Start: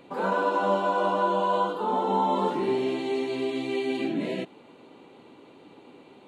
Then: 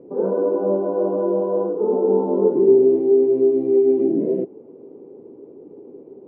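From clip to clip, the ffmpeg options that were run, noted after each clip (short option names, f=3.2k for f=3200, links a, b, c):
-af "lowpass=f=420:t=q:w=4.1,volume=2.5dB"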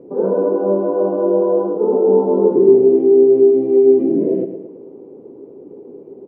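-af "aecho=1:1:111|222|333|444|555:0.335|0.161|0.0772|0.037|0.0178,volume=3.5dB"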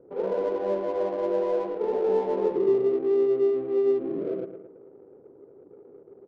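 -af "equalizer=f=240:t=o:w=1.5:g=-13.5,adynamicsmooth=sensitivity=4:basefreq=830,volume=-5dB"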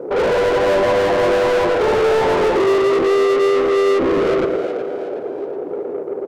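-filter_complex "[0:a]asplit=2[a][b];[b]highpass=f=720:p=1,volume=34dB,asoftclip=type=tanh:threshold=-13.5dB[c];[a][c]amix=inputs=2:normalize=0,lowpass=f=2.5k:p=1,volume=-6dB,asplit=2[d][e];[e]asplit=4[f][g][h][i];[f]adelay=370,afreqshift=95,volume=-11dB[j];[g]adelay=740,afreqshift=190,volume=-18.5dB[k];[h]adelay=1110,afreqshift=285,volume=-26.1dB[l];[i]adelay=1480,afreqshift=380,volume=-33.6dB[m];[j][k][l][m]amix=inputs=4:normalize=0[n];[d][n]amix=inputs=2:normalize=0,volume=3.5dB"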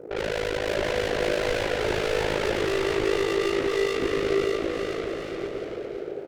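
-af "equalizer=f=250:t=o:w=1:g=-8,equalizer=f=500:t=o:w=1:g=-5,equalizer=f=1k:t=o:w=1:g=-12,tremolo=f=53:d=0.919,aecho=1:1:600|1020|1314|1520|1664:0.631|0.398|0.251|0.158|0.1"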